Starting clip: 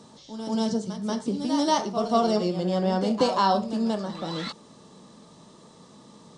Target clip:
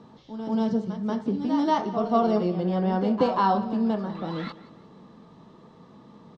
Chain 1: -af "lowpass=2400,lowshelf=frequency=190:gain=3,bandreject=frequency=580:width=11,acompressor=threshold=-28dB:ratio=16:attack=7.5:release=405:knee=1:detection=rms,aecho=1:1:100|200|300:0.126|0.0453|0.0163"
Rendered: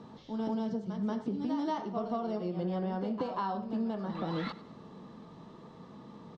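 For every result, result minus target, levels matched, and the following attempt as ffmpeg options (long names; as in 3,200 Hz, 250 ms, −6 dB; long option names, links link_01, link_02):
downward compressor: peak gain reduction +15 dB; echo 74 ms early
-af "lowpass=2400,lowshelf=frequency=190:gain=3,bandreject=frequency=580:width=11,aecho=1:1:100|200|300:0.126|0.0453|0.0163"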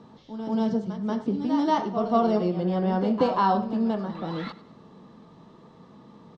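echo 74 ms early
-af "lowpass=2400,lowshelf=frequency=190:gain=3,bandreject=frequency=580:width=11,aecho=1:1:174|348|522:0.126|0.0453|0.0163"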